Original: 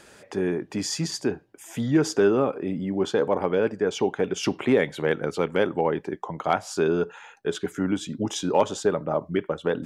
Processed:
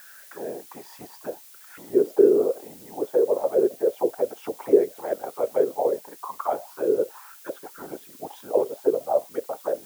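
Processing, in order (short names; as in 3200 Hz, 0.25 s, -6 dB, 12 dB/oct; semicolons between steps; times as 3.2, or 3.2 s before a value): whisperiser; auto-wah 400–1600 Hz, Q 6.1, down, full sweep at -17 dBFS; added noise blue -56 dBFS; gain +7.5 dB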